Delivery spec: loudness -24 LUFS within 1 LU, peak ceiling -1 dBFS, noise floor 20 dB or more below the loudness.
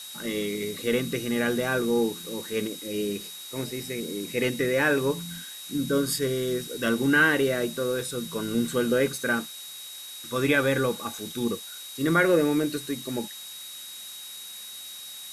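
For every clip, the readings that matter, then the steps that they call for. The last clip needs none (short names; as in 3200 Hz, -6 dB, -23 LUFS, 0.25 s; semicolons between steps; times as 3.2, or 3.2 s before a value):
steady tone 3800 Hz; tone level -41 dBFS; noise floor -41 dBFS; noise floor target -47 dBFS; loudness -26.5 LUFS; peak -9.0 dBFS; loudness target -24.0 LUFS
-> notch 3800 Hz, Q 30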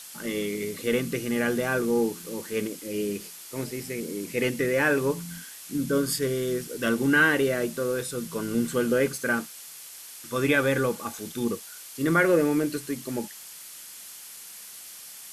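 steady tone none; noise floor -44 dBFS; noise floor target -47 dBFS
-> denoiser 6 dB, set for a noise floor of -44 dBFS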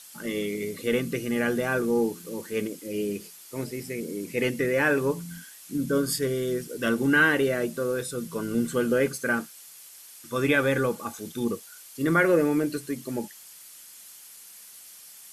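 noise floor -48 dBFS; loudness -26.5 LUFS; peak -9.0 dBFS; loudness target -24.0 LUFS
-> gain +2.5 dB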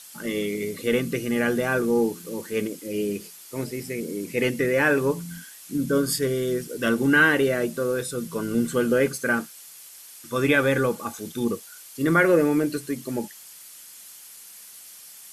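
loudness -24.0 LUFS; peak -6.5 dBFS; noise floor -45 dBFS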